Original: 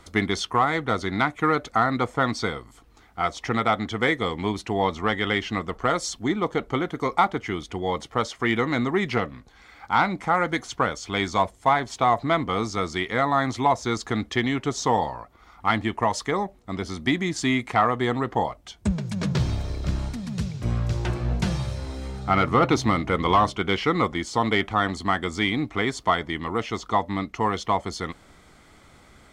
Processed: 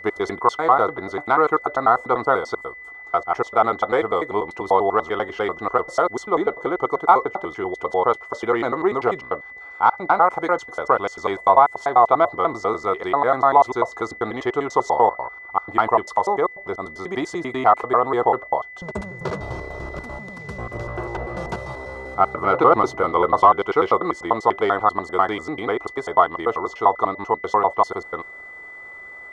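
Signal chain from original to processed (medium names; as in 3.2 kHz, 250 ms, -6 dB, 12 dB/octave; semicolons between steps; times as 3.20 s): slices played last to first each 98 ms, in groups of 2; high-order bell 700 Hz +15.5 dB 2.3 oct; whistle 2 kHz -28 dBFS; trim -8.5 dB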